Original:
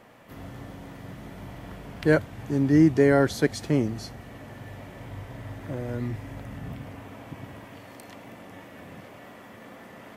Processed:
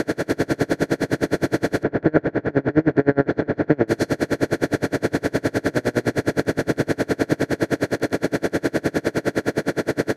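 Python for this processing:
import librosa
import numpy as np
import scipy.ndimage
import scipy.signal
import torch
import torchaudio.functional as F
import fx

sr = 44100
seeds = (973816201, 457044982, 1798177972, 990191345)

y = fx.bin_compress(x, sr, power=0.2)
y = fx.lowpass(y, sr, hz=1800.0, slope=12, at=(1.83, 3.88))
y = y * 10.0 ** (-34 * (0.5 - 0.5 * np.cos(2.0 * np.pi * 9.7 * np.arange(len(y)) / sr)) / 20.0)
y = y * librosa.db_to_amplitude(2.5)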